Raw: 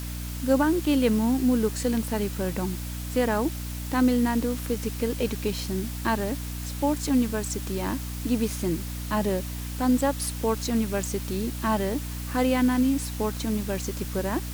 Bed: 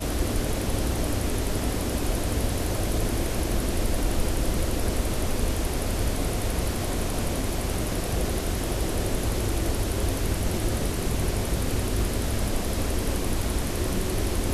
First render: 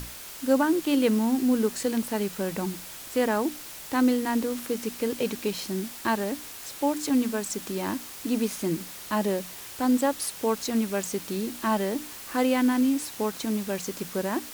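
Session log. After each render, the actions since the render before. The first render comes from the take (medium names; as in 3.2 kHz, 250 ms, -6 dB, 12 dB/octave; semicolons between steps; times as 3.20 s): hum notches 60/120/180/240/300 Hz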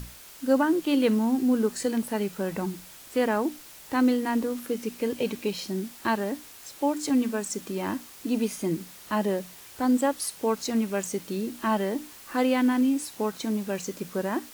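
noise print and reduce 6 dB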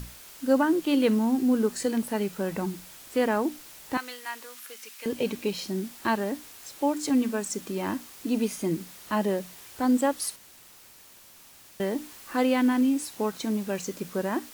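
3.97–5.06 s: high-pass 1.3 kHz; 10.36–11.80 s: room tone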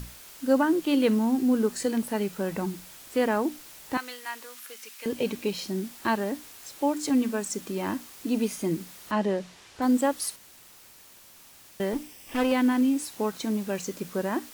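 9.11–9.82 s: low-pass 6 kHz; 11.93–12.52 s: comb filter that takes the minimum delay 0.37 ms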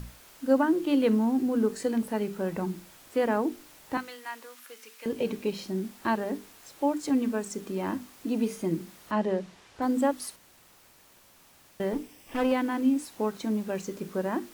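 treble shelf 2.1 kHz -7.5 dB; hum notches 50/100/150/200/250/300/350/400/450 Hz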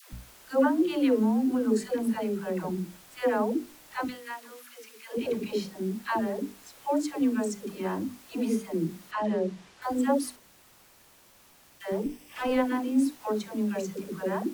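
phase dispersion lows, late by 130 ms, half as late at 560 Hz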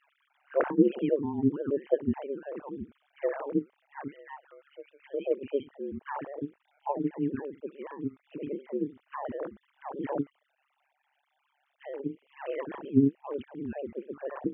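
formants replaced by sine waves; AM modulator 140 Hz, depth 60%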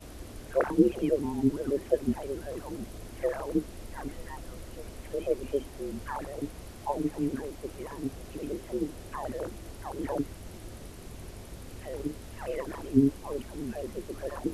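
add bed -18 dB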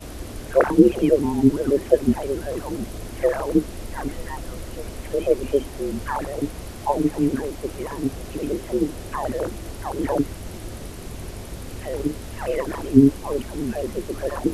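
trim +9.5 dB; peak limiter -1 dBFS, peak gain reduction 1.5 dB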